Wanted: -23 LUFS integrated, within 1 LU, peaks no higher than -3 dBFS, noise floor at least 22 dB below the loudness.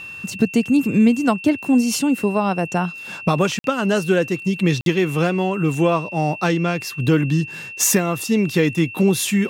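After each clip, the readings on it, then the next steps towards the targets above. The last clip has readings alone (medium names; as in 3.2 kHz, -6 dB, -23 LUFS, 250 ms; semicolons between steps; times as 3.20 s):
dropouts 2; longest dropout 52 ms; steady tone 2.7 kHz; tone level -32 dBFS; loudness -19.5 LUFS; peak level -4.5 dBFS; loudness target -23.0 LUFS
-> interpolate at 3.59/4.81 s, 52 ms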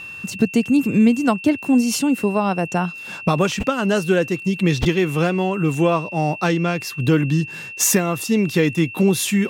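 dropouts 0; steady tone 2.7 kHz; tone level -32 dBFS
-> band-stop 2.7 kHz, Q 30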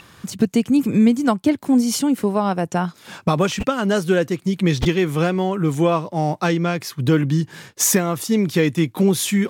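steady tone not found; loudness -19.5 LUFS; peak level -5.0 dBFS; loudness target -23.0 LUFS
-> trim -3.5 dB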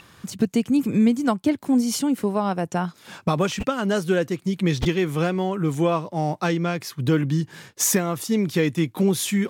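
loudness -23.0 LUFS; peak level -8.5 dBFS; noise floor -52 dBFS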